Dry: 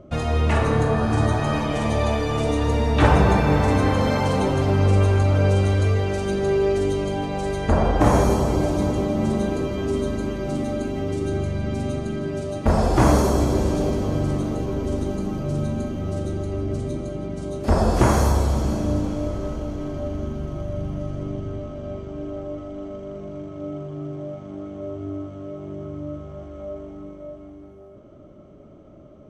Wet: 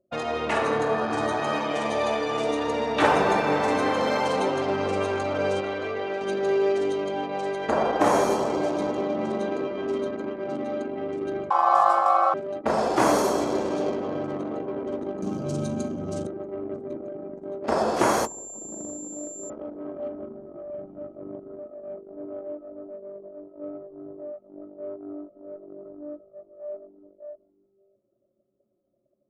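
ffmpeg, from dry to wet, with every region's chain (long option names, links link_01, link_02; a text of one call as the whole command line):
ffmpeg -i in.wav -filter_complex "[0:a]asettb=1/sr,asplit=3[link_01][link_02][link_03];[link_01]atrim=end=5.604[link_04];[link_02]atrim=start=5.6:end=6.21,asetpts=PTS-STARTPTS,afade=type=in:duration=0.004:curve=qsin,afade=type=out:start_time=0.606:duration=0.004:curve=qsin,acrossover=split=4300[link_05][link_06];[link_06]acompressor=threshold=-52dB:ratio=4:attack=1:release=60[link_07];[link_05][link_07]amix=inputs=2:normalize=0,lowshelf=frequency=180:gain=-8.5[link_08];[link_03]atrim=start=6.206[link_09];[link_04][link_08]acrossfade=duration=0.004:curve1=hsin:curve2=qsin[link_10];[link_10][link_09]acrossfade=duration=0.004:curve1=qsin:curve2=hsin,asettb=1/sr,asplit=3[link_11][link_12][link_13];[link_11]atrim=end=11.504[link_14];[link_12]atrim=start=11.5:end=12.34,asetpts=PTS-STARTPTS,afade=type=in:duration=0.004:curve=qsin,afade=type=out:start_time=0.836:duration=0.004:curve=qsin,equalizer=frequency=160:width_type=o:width=1.8:gain=11,asplit=2[link_15][link_16];[link_16]adelay=18,volume=-3dB[link_17];[link_15][link_17]amix=inputs=2:normalize=0,atrim=end_sample=37044,aeval=exprs='val(0)*sin(2*PI*940*n/s)':channel_layout=same[link_18];[link_13]atrim=start=12.336[link_19];[link_14][link_18]acrossfade=duration=0.004:curve1=hsin:curve2=qsin[link_20];[link_20][link_19]acrossfade=duration=0.004:curve1=qsin:curve2=hsin,asettb=1/sr,asplit=3[link_21][link_22][link_23];[link_21]atrim=end=15.224[link_24];[link_22]atrim=start=15.22:end=16.27,asetpts=PTS-STARTPTS,afade=type=in:duration=0.004:curve=qsin,afade=type=out:start_time=1.046:duration=0.004:curve=qsin,acrossover=split=6400[link_25][link_26];[link_26]acompressor=threshold=-56dB:ratio=4:attack=1:release=60[link_27];[link_25][link_27]amix=inputs=2:normalize=0,bass=frequency=250:gain=11,treble=frequency=4000:gain=15,bandreject=frequency=1900:width=8[link_28];[link_23]atrim=start=16.266[link_29];[link_24][link_28]acrossfade=duration=0.004:curve1=hsin:curve2=qsin[link_30];[link_30][link_29]acrossfade=duration=0.004:curve1=qsin:curve2=hsin,asettb=1/sr,asplit=3[link_31][link_32][link_33];[link_31]atrim=end=18.254[link_34];[link_32]atrim=start=18.25:end=19.5,asetpts=PTS-STARTPTS,afade=type=in:duration=0.004:curve=qsin,afade=type=out:start_time=1.246:duration=0.004:curve=qsin,acrossover=split=500|1900[link_35][link_36][link_37];[link_35]acompressor=threshold=-26dB:ratio=4[link_38];[link_36]acompressor=threshold=-43dB:ratio=4[link_39];[link_37]acompressor=threshold=-47dB:ratio=4[link_40];[link_38][link_39][link_40]amix=inputs=3:normalize=0,aeval=exprs='val(0)+0.0178*sin(2*PI*7300*n/s)':channel_layout=same[link_41];[link_33]atrim=start=19.496[link_42];[link_34][link_41]acrossfade=duration=0.004:curve1=hsin:curve2=qsin[link_43];[link_43][link_42]acrossfade=duration=0.004:curve1=qsin:curve2=hsin,highpass=350,anlmdn=15.8" out.wav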